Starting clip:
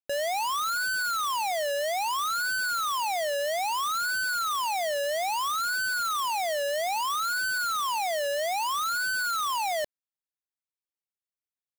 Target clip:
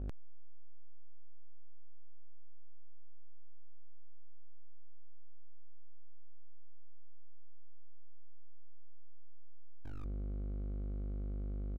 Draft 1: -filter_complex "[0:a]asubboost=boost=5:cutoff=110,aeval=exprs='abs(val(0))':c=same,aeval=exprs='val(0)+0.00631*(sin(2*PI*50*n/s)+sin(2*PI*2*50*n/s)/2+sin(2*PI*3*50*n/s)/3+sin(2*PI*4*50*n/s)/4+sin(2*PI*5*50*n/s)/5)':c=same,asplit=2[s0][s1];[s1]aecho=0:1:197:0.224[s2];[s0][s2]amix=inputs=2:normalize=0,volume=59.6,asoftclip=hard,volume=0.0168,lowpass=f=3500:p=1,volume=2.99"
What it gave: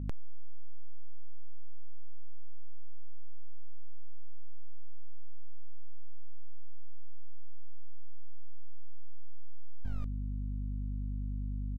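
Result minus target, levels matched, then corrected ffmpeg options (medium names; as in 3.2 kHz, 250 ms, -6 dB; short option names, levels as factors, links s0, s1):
overload inside the chain: distortion -6 dB
-filter_complex "[0:a]asubboost=boost=5:cutoff=110,aeval=exprs='abs(val(0))':c=same,aeval=exprs='val(0)+0.00631*(sin(2*PI*50*n/s)+sin(2*PI*2*50*n/s)/2+sin(2*PI*3*50*n/s)/3+sin(2*PI*4*50*n/s)/4+sin(2*PI*5*50*n/s)/5)':c=same,asplit=2[s0][s1];[s1]aecho=0:1:197:0.224[s2];[s0][s2]amix=inputs=2:normalize=0,volume=211,asoftclip=hard,volume=0.00473,lowpass=f=3500:p=1,volume=2.99"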